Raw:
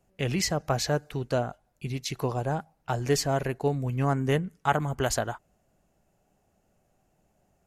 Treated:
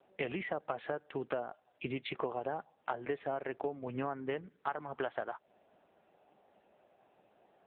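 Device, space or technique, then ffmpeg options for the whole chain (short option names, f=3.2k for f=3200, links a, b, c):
voicemail: -af "highpass=350,lowpass=2.8k,acompressor=threshold=-41dB:ratio=12,volume=9dB" -ar 8000 -c:a libopencore_amrnb -b:a 6700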